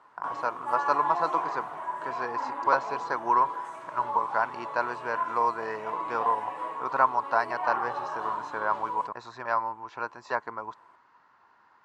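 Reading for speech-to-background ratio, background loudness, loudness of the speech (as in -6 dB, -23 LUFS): 4.5 dB, -34.5 LUFS, -30.0 LUFS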